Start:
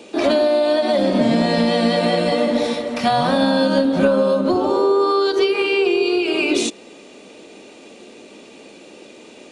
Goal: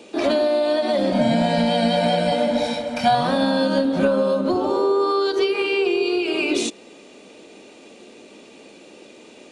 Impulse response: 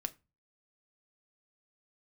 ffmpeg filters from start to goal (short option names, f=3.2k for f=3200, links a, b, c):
-filter_complex "[0:a]asettb=1/sr,asplit=3[a][b][c];[a]atrim=end=1.124[d];[b]atrim=start=1.12:end=3.15,asetpts=PTS-STARTPTS,afade=t=in:d=0.004:c=qsin,afade=t=out:st=2.026:d=0.004:c=qsin,aecho=1:1:1.3:0.75,atrim=end_sample=89523[e];[c]atrim=start=3.146[f];[d][e]acrossfade=d=0.004:c1=hsin:c2=qsin[g];[g][f]acrossfade=d=0.004:c1=qsin:c2=hsin,volume=-3dB"